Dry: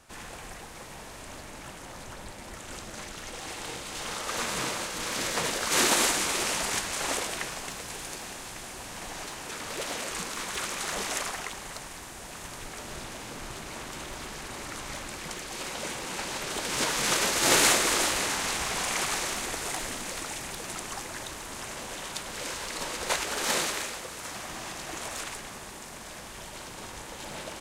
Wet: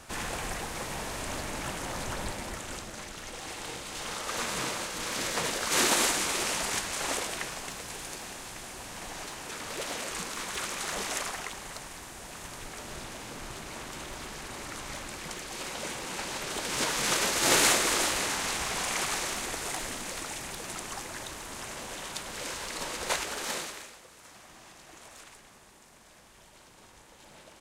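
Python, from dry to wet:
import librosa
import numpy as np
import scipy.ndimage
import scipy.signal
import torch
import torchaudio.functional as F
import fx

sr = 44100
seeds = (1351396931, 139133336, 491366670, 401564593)

y = fx.gain(x, sr, db=fx.line((2.28, 7.5), (2.97, -1.5), (23.17, -1.5), (23.98, -13.5)))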